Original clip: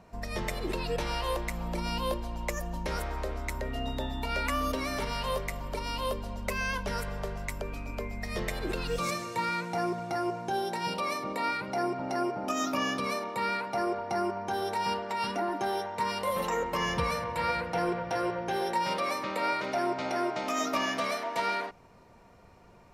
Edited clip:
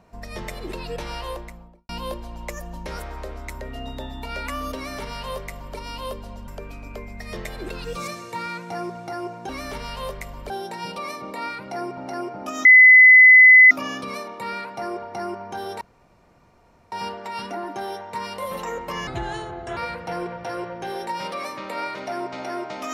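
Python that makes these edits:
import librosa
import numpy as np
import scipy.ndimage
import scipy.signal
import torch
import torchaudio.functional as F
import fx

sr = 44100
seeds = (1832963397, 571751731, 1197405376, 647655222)

y = fx.studio_fade_out(x, sr, start_s=1.19, length_s=0.7)
y = fx.edit(y, sr, fx.duplicate(start_s=4.76, length_s=1.01, to_s=10.52),
    fx.cut(start_s=6.48, length_s=1.03),
    fx.insert_tone(at_s=12.67, length_s=1.06, hz=2020.0, db=-6.0),
    fx.insert_room_tone(at_s=14.77, length_s=1.11),
    fx.speed_span(start_s=16.92, length_s=0.51, speed=0.73), tone=tone)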